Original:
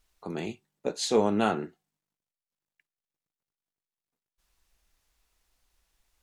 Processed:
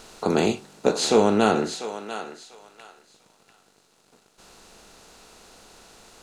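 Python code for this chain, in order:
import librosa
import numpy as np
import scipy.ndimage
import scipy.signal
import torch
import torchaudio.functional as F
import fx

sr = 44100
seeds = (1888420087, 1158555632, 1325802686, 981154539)

p1 = fx.bin_compress(x, sr, power=0.6)
p2 = fx.rider(p1, sr, range_db=10, speed_s=0.5)
p3 = p1 + F.gain(torch.from_numpy(p2), -2.0).numpy()
y = fx.echo_thinned(p3, sr, ms=694, feedback_pct=25, hz=760.0, wet_db=-9.0)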